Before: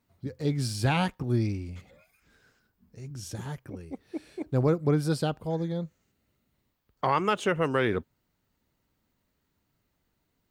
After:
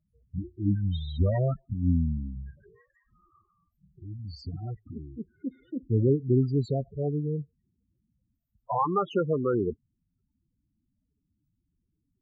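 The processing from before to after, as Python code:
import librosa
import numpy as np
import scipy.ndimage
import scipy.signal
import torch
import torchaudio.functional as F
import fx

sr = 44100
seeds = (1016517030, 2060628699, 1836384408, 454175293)

y = fx.speed_glide(x, sr, from_pct=68, to_pct=104)
y = fx.spec_topn(y, sr, count=8)
y = y * 10.0 ** (1.5 / 20.0)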